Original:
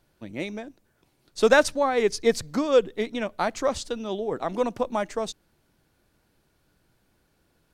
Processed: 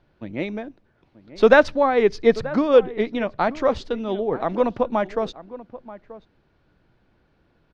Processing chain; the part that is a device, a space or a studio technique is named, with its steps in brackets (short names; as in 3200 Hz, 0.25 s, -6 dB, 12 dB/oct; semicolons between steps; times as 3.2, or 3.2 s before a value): shout across a valley (air absorption 260 m; outdoor echo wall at 160 m, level -16 dB); gain +5.5 dB